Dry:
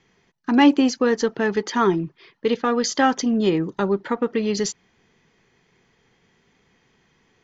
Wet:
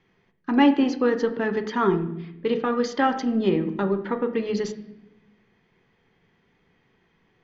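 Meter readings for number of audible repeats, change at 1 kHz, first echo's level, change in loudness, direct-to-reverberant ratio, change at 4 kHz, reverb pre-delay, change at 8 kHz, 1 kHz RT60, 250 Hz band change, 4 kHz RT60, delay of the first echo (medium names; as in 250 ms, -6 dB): no echo, -3.0 dB, no echo, -3.0 dB, 7.5 dB, -7.0 dB, 10 ms, no reading, 0.70 s, -2.5 dB, 0.70 s, no echo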